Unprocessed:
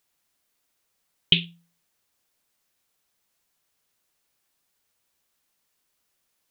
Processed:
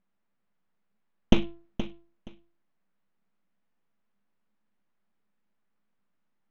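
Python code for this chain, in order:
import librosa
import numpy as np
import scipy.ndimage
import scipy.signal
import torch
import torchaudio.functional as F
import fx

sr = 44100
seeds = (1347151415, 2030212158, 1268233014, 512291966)

p1 = fx.low_shelf(x, sr, hz=320.0, db=9.5)
p2 = np.abs(p1)
p3 = scipy.signal.sosfilt(scipy.signal.butter(2, 1800.0, 'lowpass', fs=sr, output='sos'), p2)
p4 = fx.peak_eq(p3, sr, hz=200.0, db=15.0, octaves=0.48)
p5 = fx.hum_notches(p4, sr, base_hz=50, count=3)
y = p5 + fx.echo_feedback(p5, sr, ms=473, feedback_pct=19, wet_db=-12, dry=0)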